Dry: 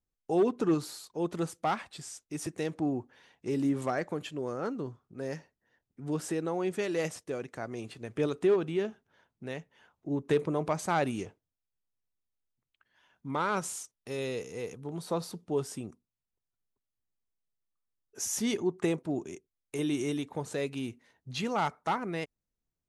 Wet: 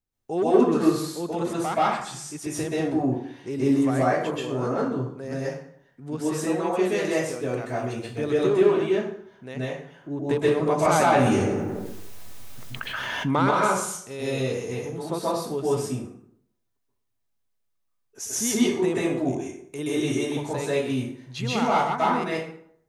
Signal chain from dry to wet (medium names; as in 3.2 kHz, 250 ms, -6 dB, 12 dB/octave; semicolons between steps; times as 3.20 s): 6.89–8.30 s: crackle 330 per s -59 dBFS; plate-style reverb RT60 0.66 s, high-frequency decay 0.65×, pre-delay 115 ms, DRR -8 dB; 10.85–13.51 s: level flattener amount 70%